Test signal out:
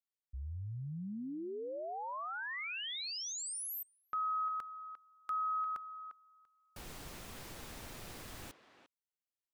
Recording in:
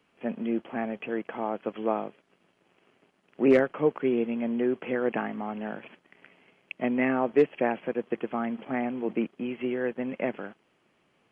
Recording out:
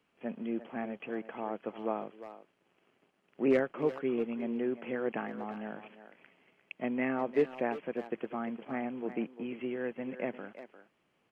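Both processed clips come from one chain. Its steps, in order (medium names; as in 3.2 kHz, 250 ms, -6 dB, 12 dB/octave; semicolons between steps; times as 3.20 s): speakerphone echo 350 ms, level -11 dB; trim -6.5 dB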